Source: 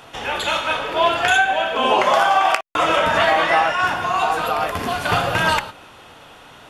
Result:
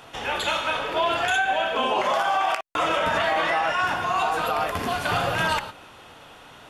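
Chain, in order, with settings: peak limiter -11 dBFS, peak gain reduction 8 dB; trim -3 dB

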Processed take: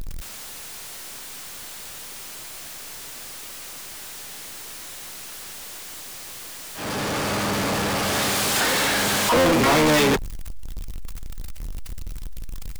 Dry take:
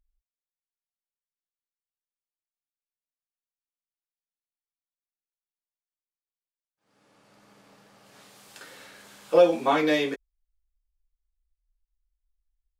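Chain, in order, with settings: harmony voices -12 st -6 dB, +12 st -11 dB; power-law waveshaper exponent 0.35; saturation -16 dBFS, distortion -9 dB

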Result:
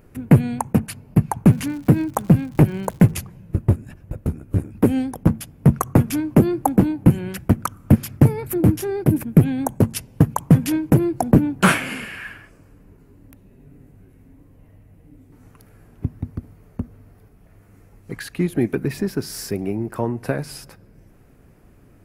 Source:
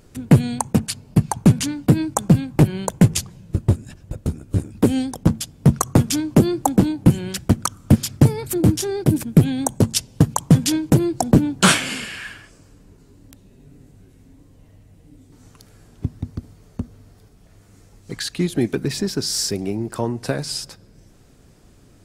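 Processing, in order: high-order bell 5.3 kHz -12 dB; 1.51–3.10 s: crackle 190 per s -35 dBFS

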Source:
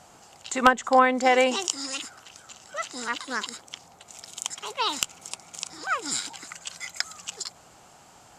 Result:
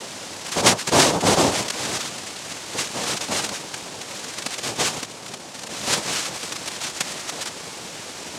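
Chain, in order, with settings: spectral levelling over time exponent 0.6; word length cut 6-bit, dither triangular; 4.88–5.69 s: peaking EQ 2.2 kHz -12.5 dB 1.7 oct; noise-vocoded speech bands 2

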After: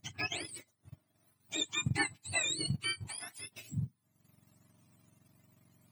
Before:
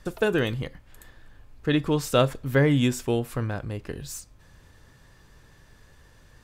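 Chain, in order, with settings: spectrum inverted on a logarithmic axis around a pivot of 1 kHz; peaking EQ 470 Hz -12 dB 0.96 oct; speed mistake 44.1 kHz file played as 48 kHz; transient shaper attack +2 dB, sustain -10 dB; trim -8 dB

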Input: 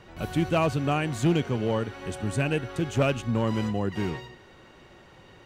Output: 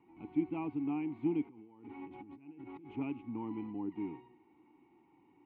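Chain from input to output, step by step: 1.49–2.96 s: compressor with a negative ratio -38 dBFS, ratio -1; vowel filter u; distance through air 500 m

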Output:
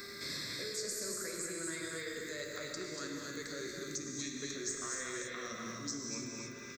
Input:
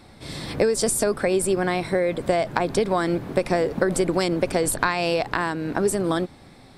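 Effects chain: pitch bend over the whole clip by -7 st starting unshifted; time-frequency box 3.67–4.35 s, 390–1800 Hz -12 dB; reverse; compression, threshold -29 dBFS, peak gain reduction 14 dB; reverse; crackle 12 per s -53 dBFS; RIAA curve recording; mains buzz 400 Hz, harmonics 5, -51 dBFS -1 dB/octave; static phaser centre 3 kHz, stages 6; on a send: delay 237 ms -6.5 dB; on the sum: gated-style reverb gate 340 ms flat, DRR -0.5 dB; three bands compressed up and down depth 70%; trim -9 dB

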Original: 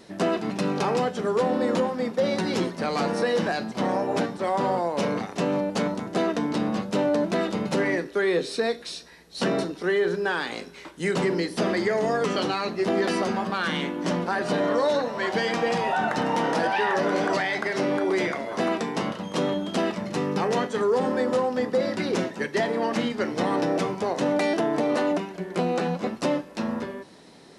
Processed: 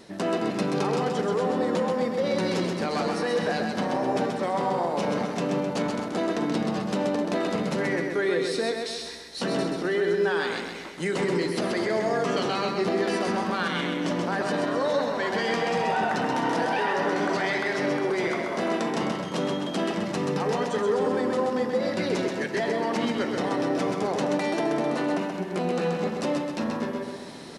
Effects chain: peak limiter -19 dBFS, peak gain reduction 6.5 dB; reverse; upward compressor, threshold -34 dBFS; reverse; feedback delay 130 ms, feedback 50%, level -4.5 dB

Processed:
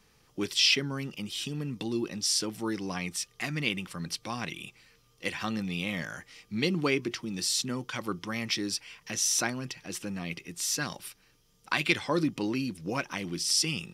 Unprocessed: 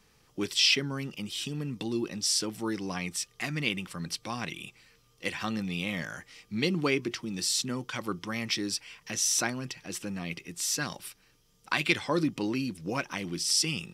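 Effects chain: band-stop 7.8 kHz, Q 23

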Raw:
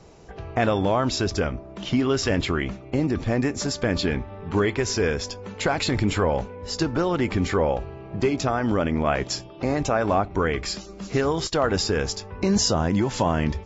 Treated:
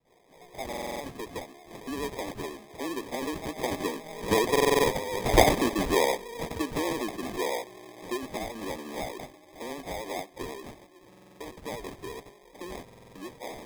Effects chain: median filter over 5 samples; Doppler pass-by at 5.12 s, 24 m/s, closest 9.6 m; high-pass 290 Hz 24 dB/octave; in parallel at 0 dB: compression, threshold -48 dBFS, peak gain reduction 25.5 dB; on the sum: phase dispersion lows, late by 80 ms, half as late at 1.1 kHz; sample-and-hold 31×; vibrato 12 Hz 50 cents; buffer glitch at 0.68/4.51/11.08/12.83 s, samples 2048, times 6; trim +5.5 dB

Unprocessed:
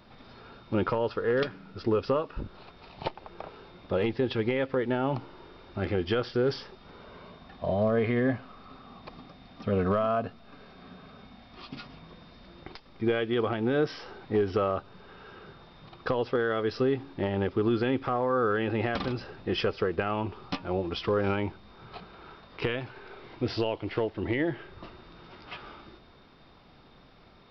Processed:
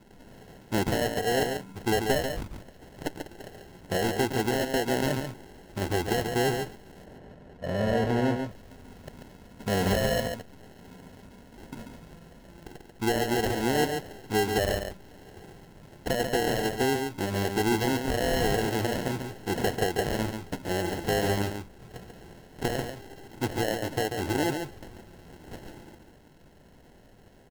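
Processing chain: sample-and-hold 37×; 7.04–8.38 s: low-pass 1.5 kHz 6 dB/octave; on a send: delay 140 ms -6 dB

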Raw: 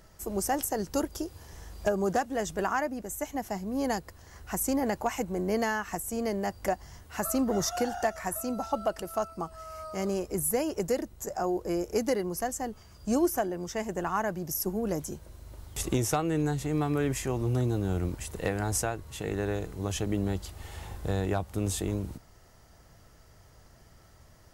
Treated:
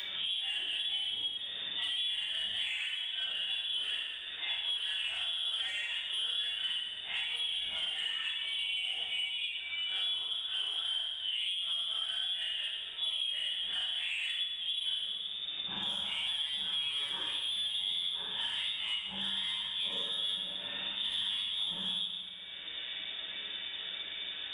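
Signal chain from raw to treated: phase randomisation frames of 200 ms; bass shelf 120 Hz -6.5 dB; peak limiter -23.5 dBFS, peak gain reduction 8.5 dB; frequency inversion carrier 3.6 kHz; saturation -25.5 dBFS, distortion -20 dB; reverberation RT60 1.0 s, pre-delay 5 ms, DRR -1 dB; three bands compressed up and down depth 100%; trim -5.5 dB

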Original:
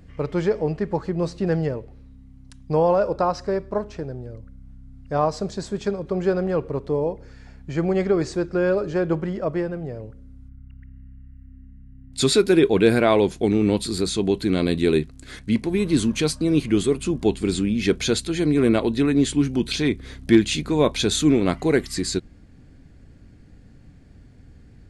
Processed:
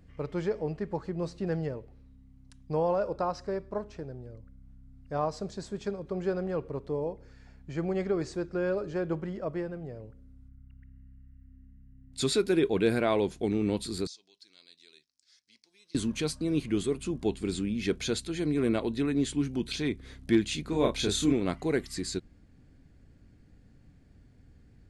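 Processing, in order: 14.07–15.95 s: band-pass filter 5.3 kHz, Q 5.4; 20.69–21.33 s: doubling 30 ms -3 dB; trim -9 dB

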